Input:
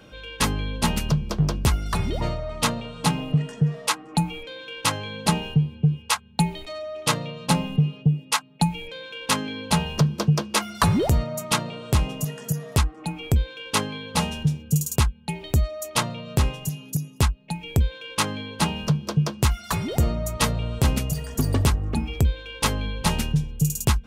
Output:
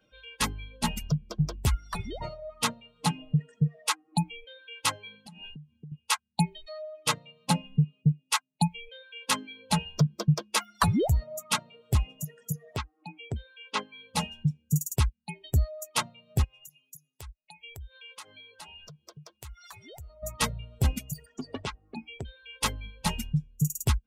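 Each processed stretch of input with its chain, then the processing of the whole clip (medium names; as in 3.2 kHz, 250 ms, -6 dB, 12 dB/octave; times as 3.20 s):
5.15–5.92 s: peaking EQ 470 Hz -6.5 dB 0.64 oct + compression 16:1, threshold -29 dBFS
12.76–13.98 s: high-pass 190 Hz 6 dB/octave + distance through air 93 m
16.44–20.23 s: peaking EQ 200 Hz -13 dB 1.1 oct + compression 2.5:1, threshold -35 dBFS
21.26–22.43 s: low-pass 5.1 kHz + peaking EQ 66 Hz -14 dB 2.4 oct
whole clip: expander on every frequency bin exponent 1.5; reverb removal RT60 1.5 s; trim -2 dB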